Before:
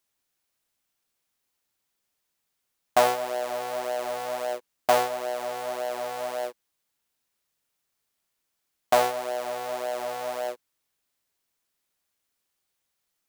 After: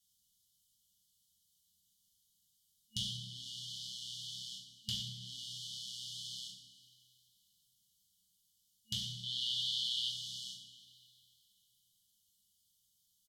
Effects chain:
brick-wall band-stop 220–2,900 Hz
treble cut that deepens with the level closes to 2,500 Hz, closed at −38 dBFS
0:09.23–0:10.09: flat-topped bell 2,100 Hz +11.5 dB 2.3 octaves
echo with shifted repeats 91 ms, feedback 59%, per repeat +34 Hz, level −17.5 dB
coupled-rooms reverb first 0.55 s, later 2.9 s, from −18 dB, DRR −3 dB
level +1 dB

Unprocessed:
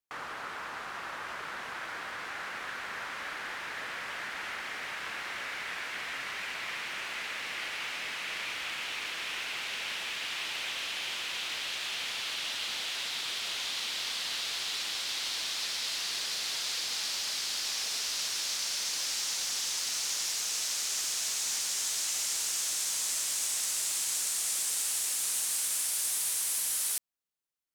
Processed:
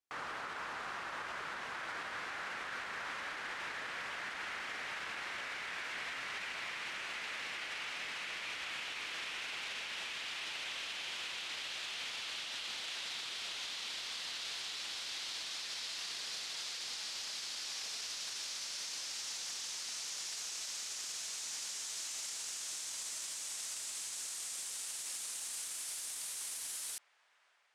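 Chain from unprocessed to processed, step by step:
low-pass filter 9,600 Hz 12 dB per octave
brickwall limiter −31.5 dBFS, peak gain reduction 10.5 dB
on a send: delay with a band-pass on its return 580 ms, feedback 77%, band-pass 1,100 Hz, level −18 dB
on the sum: level −1.5 dB

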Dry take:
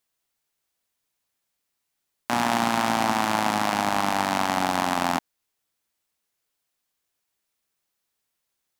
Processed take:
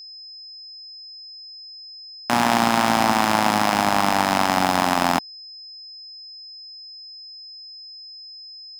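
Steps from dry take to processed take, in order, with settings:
hold until the input has moved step −35 dBFS
steady tone 5,100 Hz −42 dBFS
level +4.5 dB

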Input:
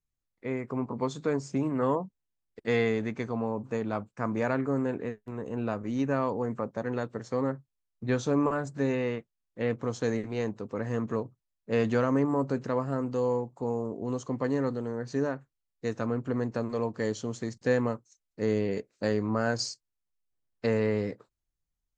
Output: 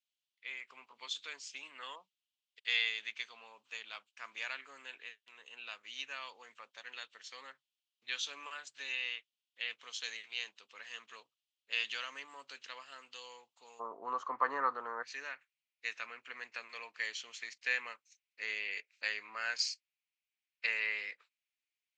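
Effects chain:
four-pole ladder band-pass 3,400 Hz, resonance 60%, from 0:13.79 1,300 Hz, from 0:15.02 2,700 Hz
level +14.5 dB

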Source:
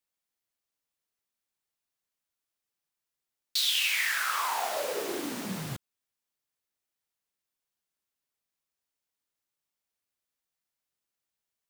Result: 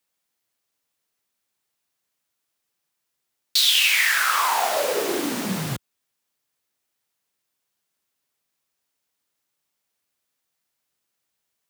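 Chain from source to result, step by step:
high-pass filter 76 Hz
level +9 dB

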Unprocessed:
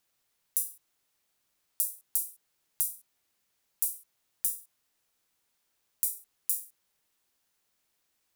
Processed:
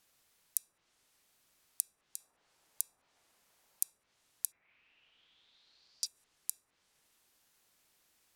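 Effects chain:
0:02.20–0:03.90: parametric band 780 Hz +6.5 dB 1.8 octaves
0:04.51–0:06.05: low-pass with resonance 2,100 Hz → 5,000 Hz, resonance Q 6.5
treble cut that deepens with the level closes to 1,400 Hz, closed at −31.5 dBFS
level +5.5 dB

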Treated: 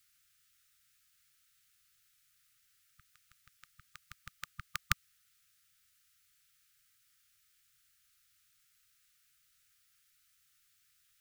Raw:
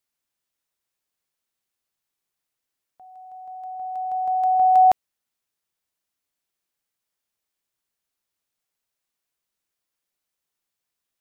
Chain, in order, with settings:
linear-phase brick-wall band-stop 160–1,200 Hz
level +12 dB

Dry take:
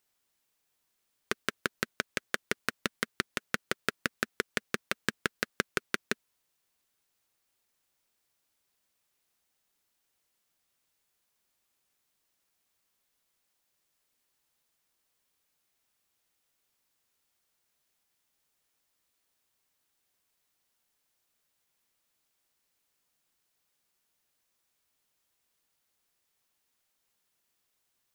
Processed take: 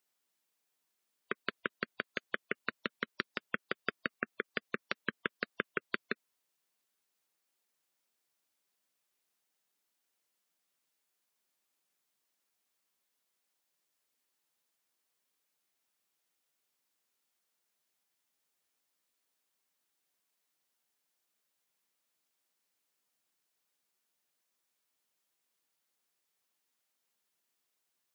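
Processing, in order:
gate on every frequency bin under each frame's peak −15 dB strong
high-pass filter 170 Hz 12 dB per octave
level −4 dB

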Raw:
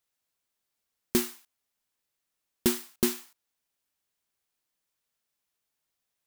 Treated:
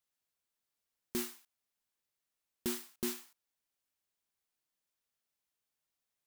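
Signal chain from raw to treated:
brickwall limiter −17.5 dBFS, peak gain reduction 7.5 dB
level −5.5 dB

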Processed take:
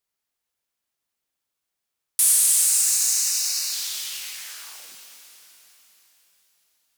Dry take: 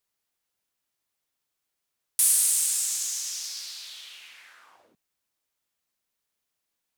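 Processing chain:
0:02.65–0:03.73: Butterworth band-reject 3,300 Hz, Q 4.3
in parallel at 0 dB: speech leveller within 4 dB
on the sum: leveller curve on the samples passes 1
reverb with rising layers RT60 3.9 s, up +12 semitones, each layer −8 dB, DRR 3.5 dB
level −4.5 dB

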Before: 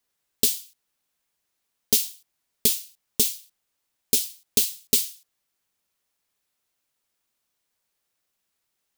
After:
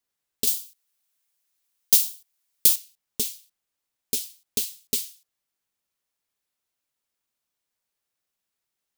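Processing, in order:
0:00.47–0:02.76: spectral tilt +2.5 dB per octave
level −5.5 dB

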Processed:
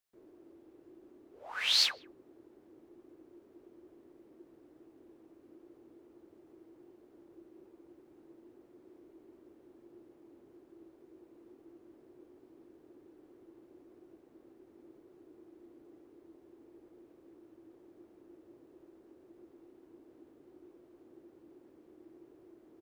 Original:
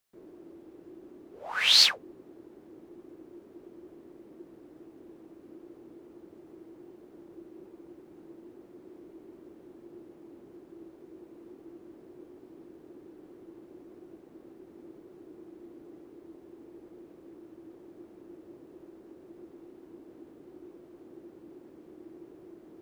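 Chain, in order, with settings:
parametric band 180 Hz −8 dB 0.38 octaves
far-end echo of a speakerphone 160 ms, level −27 dB
level −7.5 dB

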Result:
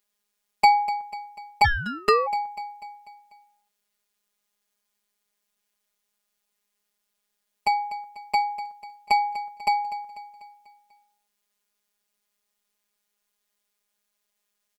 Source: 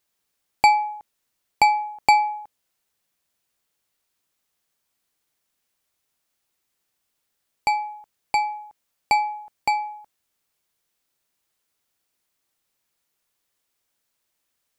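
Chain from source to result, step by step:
repeating echo 246 ms, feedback 51%, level −15 dB
phases set to zero 206 Hz
0:01.64–0:02.26: ring modulation 960 Hz → 290 Hz

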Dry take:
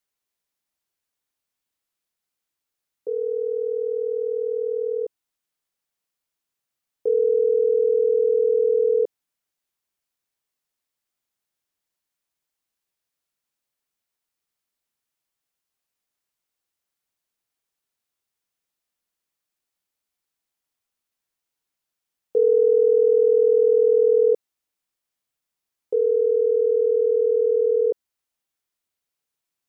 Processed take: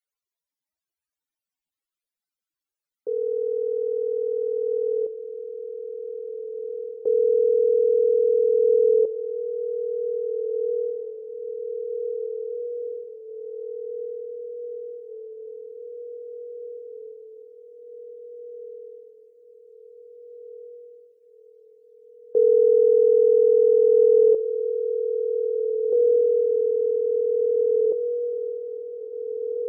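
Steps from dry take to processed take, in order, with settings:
spectral peaks only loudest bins 64
feedback delay with all-pass diffusion 1,845 ms, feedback 67%, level −8.5 dB

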